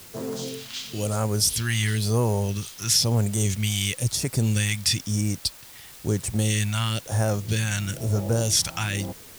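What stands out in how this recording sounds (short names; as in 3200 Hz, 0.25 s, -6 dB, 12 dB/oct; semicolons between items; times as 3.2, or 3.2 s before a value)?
phasing stages 2, 1 Hz, lowest notch 440–3100 Hz; a quantiser's noise floor 8-bit, dither triangular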